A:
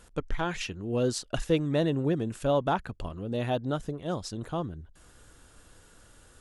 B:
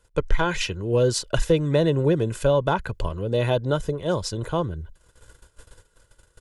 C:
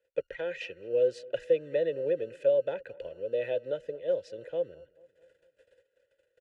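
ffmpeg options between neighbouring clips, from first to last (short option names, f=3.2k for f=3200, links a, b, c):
-filter_complex "[0:a]agate=range=-19dB:threshold=-52dB:ratio=16:detection=peak,aecho=1:1:2:0.56,acrossover=split=260[a][b];[b]acompressor=threshold=-25dB:ratio=6[c];[a][c]amix=inputs=2:normalize=0,volume=7.5dB"
-filter_complex "[0:a]acrossover=split=110[a][b];[a]acrusher=samples=31:mix=1:aa=0.000001[c];[c][b]amix=inputs=2:normalize=0,asplit=3[d][e][f];[d]bandpass=f=530:t=q:w=8,volume=0dB[g];[e]bandpass=f=1.84k:t=q:w=8,volume=-6dB[h];[f]bandpass=f=2.48k:t=q:w=8,volume=-9dB[i];[g][h][i]amix=inputs=3:normalize=0,asplit=2[j][k];[k]adelay=219,lowpass=f=1.8k:p=1,volume=-22.5dB,asplit=2[l][m];[m]adelay=219,lowpass=f=1.8k:p=1,volume=0.55,asplit=2[n][o];[o]adelay=219,lowpass=f=1.8k:p=1,volume=0.55,asplit=2[p][q];[q]adelay=219,lowpass=f=1.8k:p=1,volume=0.55[r];[j][l][n][p][r]amix=inputs=5:normalize=0"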